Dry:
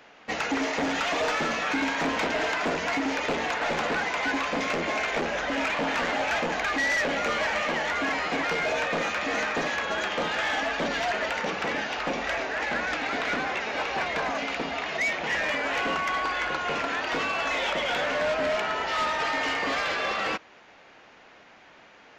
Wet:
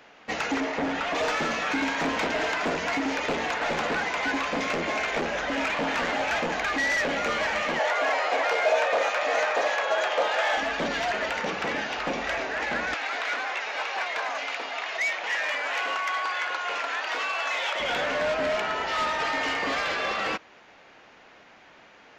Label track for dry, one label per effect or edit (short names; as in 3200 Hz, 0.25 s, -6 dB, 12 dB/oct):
0.600000	1.150000	LPF 2300 Hz 6 dB/oct
7.790000	10.570000	resonant high-pass 590 Hz, resonance Q 2.4
12.940000	17.800000	HPF 650 Hz